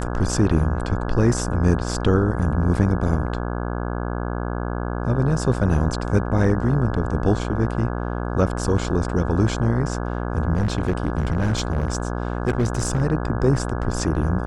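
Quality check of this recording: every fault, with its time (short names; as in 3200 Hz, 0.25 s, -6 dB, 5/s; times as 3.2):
buzz 60 Hz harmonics 28 -26 dBFS
10.54–13.02 clipped -15.5 dBFS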